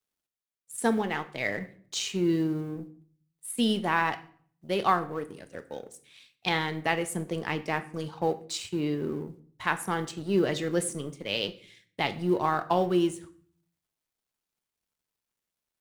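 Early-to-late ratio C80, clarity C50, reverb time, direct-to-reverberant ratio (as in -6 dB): 20.0 dB, 16.0 dB, 0.50 s, 10.0 dB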